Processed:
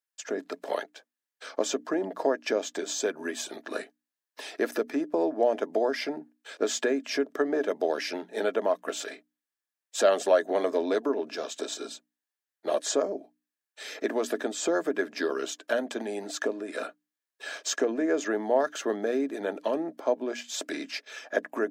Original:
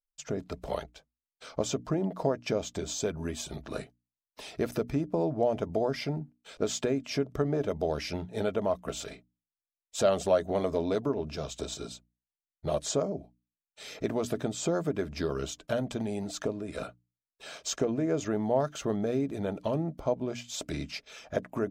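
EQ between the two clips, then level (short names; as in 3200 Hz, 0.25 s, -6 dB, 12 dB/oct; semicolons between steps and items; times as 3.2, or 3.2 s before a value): steep high-pass 260 Hz 36 dB/oct; bell 1700 Hz +11 dB 0.25 oct; +3.0 dB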